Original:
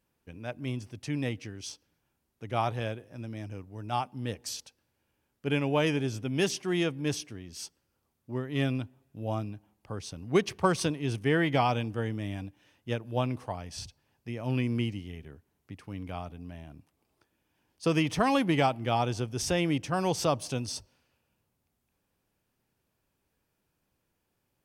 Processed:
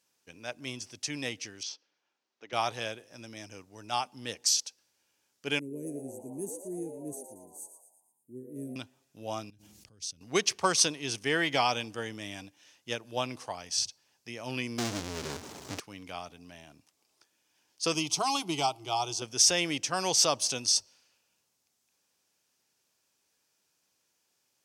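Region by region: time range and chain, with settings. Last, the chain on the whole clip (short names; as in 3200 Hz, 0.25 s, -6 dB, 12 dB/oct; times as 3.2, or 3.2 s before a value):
1.63–2.53 HPF 310 Hz + air absorption 200 m
5.59–8.76 inverse Chebyshev band-stop 690–5600 Hz + low shelf 120 Hz -12 dB + frequency-shifting echo 0.115 s, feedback 51%, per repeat +110 Hz, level -10 dB
9.5–10.21 passive tone stack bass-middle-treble 10-0-1 + fast leveller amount 100%
14.78–15.8 median filter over 25 samples + power-law curve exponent 0.35
17.94–19.22 fixed phaser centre 350 Hz, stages 8 + mismatched tape noise reduction decoder only
whole clip: HPF 510 Hz 6 dB/oct; bell 6000 Hz +14 dB 1.5 oct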